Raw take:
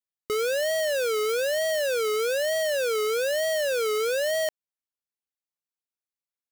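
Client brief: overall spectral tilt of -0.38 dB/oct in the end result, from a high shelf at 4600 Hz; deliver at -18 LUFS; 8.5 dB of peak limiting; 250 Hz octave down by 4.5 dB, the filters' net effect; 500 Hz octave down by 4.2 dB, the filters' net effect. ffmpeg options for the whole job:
-af "equalizer=f=250:t=o:g=-4.5,equalizer=f=500:t=o:g=-4,highshelf=f=4.6k:g=-3.5,volume=18dB,alimiter=limit=-14.5dB:level=0:latency=1"

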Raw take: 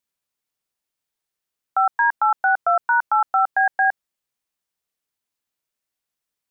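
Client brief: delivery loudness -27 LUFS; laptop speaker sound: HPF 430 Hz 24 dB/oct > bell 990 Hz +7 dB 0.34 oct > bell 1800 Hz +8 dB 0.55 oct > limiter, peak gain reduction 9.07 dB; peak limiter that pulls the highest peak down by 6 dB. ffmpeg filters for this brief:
-af "alimiter=limit=-16.5dB:level=0:latency=1,highpass=f=430:w=0.5412,highpass=f=430:w=1.3066,equalizer=f=990:t=o:w=0.34:g=7,equalizer=f=1.8k:t=o:w=0.55:g=8,volume=0.5dB,alimiter=limit=-18.5dB:level=0:latency=1"

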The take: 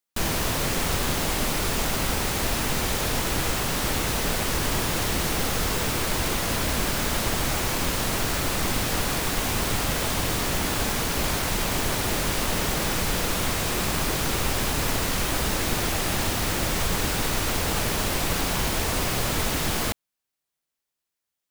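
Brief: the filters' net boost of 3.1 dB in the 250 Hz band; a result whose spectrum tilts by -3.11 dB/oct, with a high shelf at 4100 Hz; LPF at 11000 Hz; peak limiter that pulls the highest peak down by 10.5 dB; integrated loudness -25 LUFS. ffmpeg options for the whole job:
-af "lowpass=11k,equalizer=f=250:t=o:g=4,highshelf=f=4.1k:g=6.5,volume=4dB,alimiter=limit=-16.5dB:level=0:latency=1"

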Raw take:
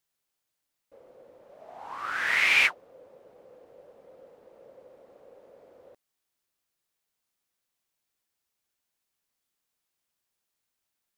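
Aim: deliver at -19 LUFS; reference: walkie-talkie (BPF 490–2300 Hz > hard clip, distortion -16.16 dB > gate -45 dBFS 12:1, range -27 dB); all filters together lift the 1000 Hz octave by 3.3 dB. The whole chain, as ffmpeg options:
-af "highpass=490,lowpass=2.3k,equalizer=f=1k:t=o:g=5,asoftclip=type=hard:threshold=-19.5dB,agate=range=-27dB:threshold=-45dB:ratio=12,volume=6.5dB"

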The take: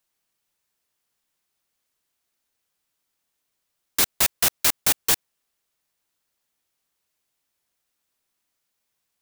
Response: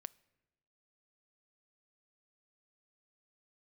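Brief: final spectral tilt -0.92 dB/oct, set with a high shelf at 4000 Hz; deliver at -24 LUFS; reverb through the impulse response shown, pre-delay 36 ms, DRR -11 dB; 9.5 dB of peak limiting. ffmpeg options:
-filter_complex "[0:a]highshelf=f=4k:g=-6,alimiter=limit=-18dB:level=0:latency=1,asplit=2[a][b];[1:a]atrim=start_sample=2205,adelay=36[c];[b][c]afir=irnorm=-1:irlink=0,volume=16.5dB[d];[a][d]amix=inputs=2:normalize=0,volume=-4.5dB"

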